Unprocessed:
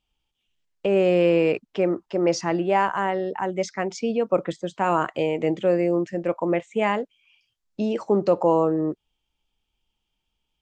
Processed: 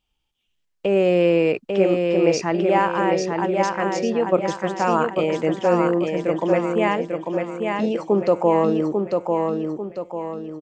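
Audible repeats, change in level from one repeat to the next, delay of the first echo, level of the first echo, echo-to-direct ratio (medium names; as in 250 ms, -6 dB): 5, -7.5 dB, 845 ms, -4.0 dB, -3.0 dB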